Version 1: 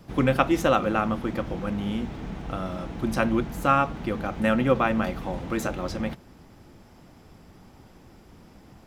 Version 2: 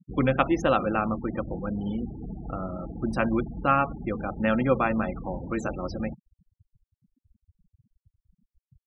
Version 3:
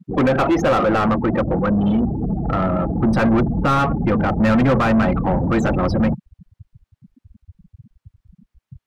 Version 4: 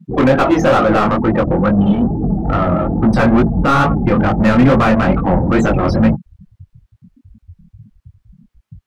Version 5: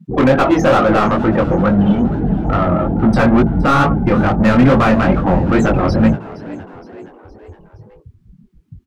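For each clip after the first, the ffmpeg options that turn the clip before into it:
-af "afftfilt=real='re*gte(hypot(re,im),0.0316)':imag='im*gte(hypot(re,im),0.0316)':win_size=1024:overlap=0.75,volume=-1.5dB"
-filter_complex "[0:a]asubboost=boost=4.5:cutoff=190,asplit=2[a][b];[b]highpass=f=720:p=1,volume=31dB,asoftclip=type=tanh:threshold=-7dB[c];[a][c]amix=inputs=2:normalize=0,lowpass=f=1k:p=1,volume=-6dB"
-af "flanger=delay=18:depth=7.3:speed=2.3,volume=7.5dB"
-filter_complex "[0:a]asplit=5[a][b][c][d][e];[b]adelay=467,afreqshift=70,volume=-18dB[f];[c]adelay=934,afreqshift=140,volume=-23.7dB[g];[d]adelay=1401,afreqshift=210,volume=-29.4dB[h];[e]adelay=1868,afreqshift=280,volume=-35dB[i];[a][f][g][h][i]amix=inputs=5:normalize=0"

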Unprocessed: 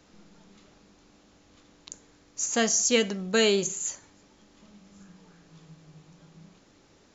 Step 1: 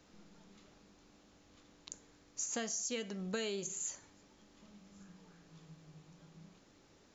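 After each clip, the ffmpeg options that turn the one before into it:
-af "acompressor=threshold=-30dB:ratio=10,volume=-5.5dB"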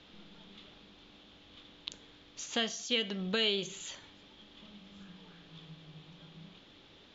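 -af "lowpass=f=3.4k:t=q:w=5.1,volume=4.5dB"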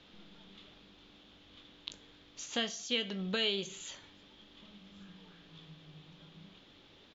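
-filter_complex "[0:a]asplit=2[a][b];[b]adelay=21,volume=-13dB[c];[a][c]amix=inputs=2:normalize=0,volume=-2dB"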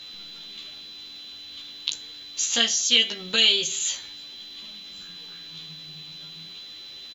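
-filter_complex "[0:a]crystalizer=i=9:c=0,asplit=2[a][b];[b]adelay=13,volume=-2dB[c];[a][c]amix=inputs=2:normalize=0,aeval=exprs='val(0)+0.01*sin(2*PI*4000*n/s)':c=same"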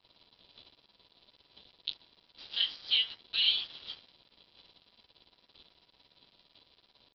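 -af "bandpass=f=3.5k:t=q:w=2.3:csg=0,aphaser=in_gain=1:out_gain=1:delay=4.1:decay=0.22:speed=0.54:type=triangular,aresample=11025,aeval=exprs='sgn(val(0))*max(abs(val(0))-0.01,0)':c=same,aresample=44100,volume=-6.5dB"

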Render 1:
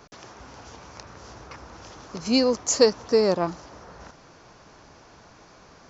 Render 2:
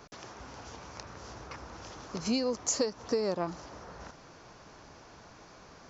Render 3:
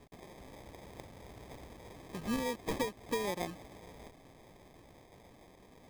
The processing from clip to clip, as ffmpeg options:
-af "acompressor=threshold=-24dB:ratio=12,volume=-2dB"
-af "acrusher=samples=31:mix=1:aa=0.000001,volume=-5dB"

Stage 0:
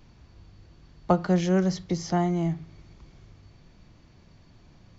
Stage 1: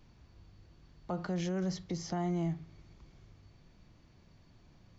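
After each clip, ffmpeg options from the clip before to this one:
-af "alimiter=limit=-20dB:level=0:latency=1:release=34,volume=-6.5dB"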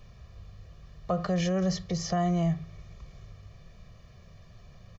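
-af "aecho=1:1:1.7:0.87,volume=6dB"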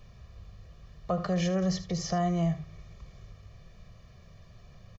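-af "aecho=1:1:76:0.2,volume=-1dB"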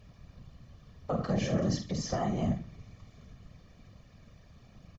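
-filter_complex "[0:a]asplit=2[a][b];[b]adelay=49,volume=-7.5dB[c];[a][c]amix=inputs=2:normalize=0,afftfilt=real='hypot(re,im)*cos(2*PI*random(0))':imag='hypot(re,im)*sin(2*PI*random(1))':win_size=512:overlap=0.75,volume=3dB"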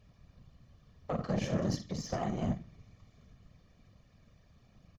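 -af "aeval=exprs='0.133*(cos(1*acos(clip(val(0)/0.133,-1,1)))-cos(1*PI/2))+0.0075*(cos(7*acos(clip(val(0)/0.133,-1,1)))-cos(7*PI/2))':c=same,volume=-2.5dB"

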